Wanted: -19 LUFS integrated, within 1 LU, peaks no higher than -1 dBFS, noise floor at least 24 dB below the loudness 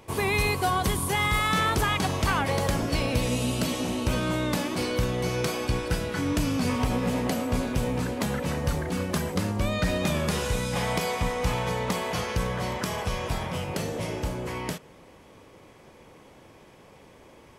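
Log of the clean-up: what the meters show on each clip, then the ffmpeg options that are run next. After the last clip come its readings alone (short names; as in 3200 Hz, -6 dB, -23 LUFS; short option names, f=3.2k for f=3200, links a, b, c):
loudness -27.5 LUFS; peak -14.0 dBFS; loudness target -19.0 LUFS
-> -af "volume=8.5dB"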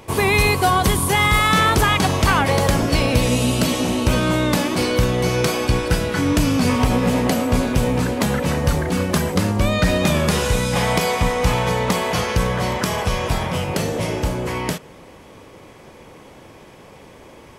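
loudness -19.0 LUFS; peak -5.5 dBFS; noise floor -44 dBFS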